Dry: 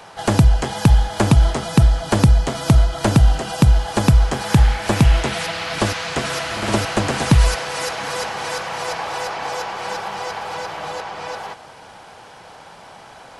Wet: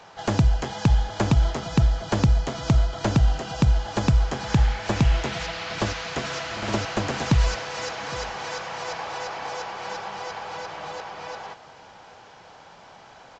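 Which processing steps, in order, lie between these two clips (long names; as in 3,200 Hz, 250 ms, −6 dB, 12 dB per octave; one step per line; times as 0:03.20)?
single-tap delay 809 ms −21 dB
level −6.5 dB
A-law companding 128 kbit/s 16,000 Hz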